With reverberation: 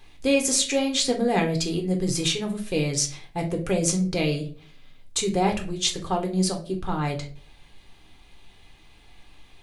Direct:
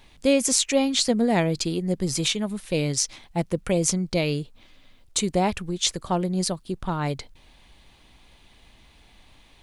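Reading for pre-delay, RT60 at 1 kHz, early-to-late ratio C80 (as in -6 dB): 3 ms, 0.40 s, 17.0 dB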